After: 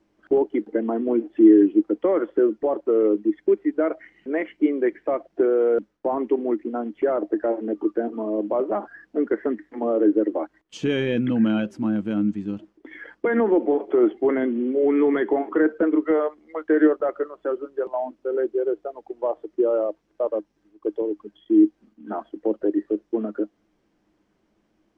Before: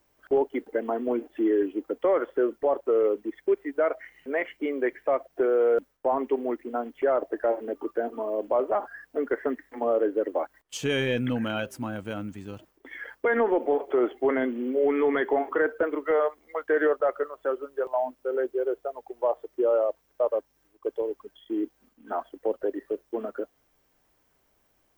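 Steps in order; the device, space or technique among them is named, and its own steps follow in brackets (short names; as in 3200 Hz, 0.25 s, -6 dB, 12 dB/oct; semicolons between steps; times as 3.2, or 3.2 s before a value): inside a cardboard box (LPF 5100 Hz 12 dB/oct; small resonant body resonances 210/310 Hz, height 16 dB, ringing for 75 ms); gain -1.5 dB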